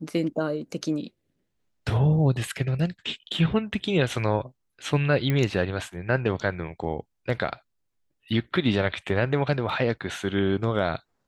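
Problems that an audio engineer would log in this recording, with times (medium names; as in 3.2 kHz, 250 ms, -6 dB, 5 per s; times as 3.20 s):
5.30 s: pop -13 dBFS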